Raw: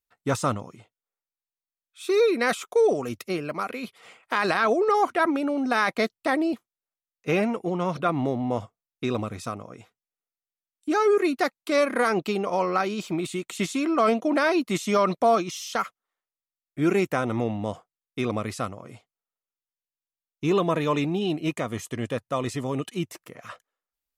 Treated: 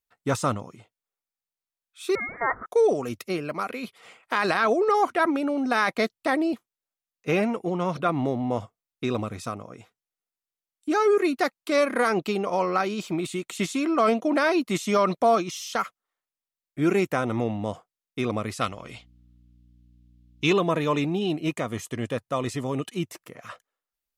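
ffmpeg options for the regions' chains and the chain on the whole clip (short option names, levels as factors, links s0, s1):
-filter_complex "[0:a]asettb=1/sr,asplit=3[s0][s1][s2];[s0]atrim=end=2.154[s3];[s1]atrim=start=2.15:end=2.66,asetpts=PTS-STARTPTS,afade=t=in:d=0.004:c=qsin,afade=t=out:st=0.506:d=0.004:c=qsin,aeval=exprs='val(0)+0.5*0.0282*sgn(val(0))':c=same,highpass=f=700:w=0.5412,highpass=f=700:w=1.3066,lowpass=f=2200:t=q:w=0.5098,lowpass=f=2200:t=q:w=0.6013,lowpass=f=2200:t=q:w=0.9,lowpass=f=2200:t=q:w=2.563,afreqshift=-2600[s4];[s2]atrim=start=2.656[s5];[s3][s4]acrossfade=d=0.004:c1=hsin:c2=qsin[s6];[s6][s5]acrossfade=d=0.004:c1=qsin:c2=hsin,asettb=1/sr,asplit=3[s7][s8][s9];[s7]atrim=end=18.614[s10];[s8]atrim=start=18.61:end=20.53,asetpts=PTS-STARTPTS,afade=t=in:d=0.004:c=qsin,afade=t=out:st=1.916:d=0.004:c=qsin,equalizer=f=3300:w=0.68:g=14,aeval=exprs='val(0)+0.00178*(sin(2*PI*60*n/s)+sin(2*PI*2*60*n/s)/2+sin(2*PI*3*60*n/s)/3+sin(2*PI*4*60*n/s)/4+sin(2*PI*5*60*n/s)/5)':c=same[s11];[s9]atrim=start=20.526[s12];[s10][s11]acrossfade=d=0.004:c1=hsin:c2=qsin[s13];[s13][s12]acrossfade=d=0.004:c1=qsin:c2=hsin"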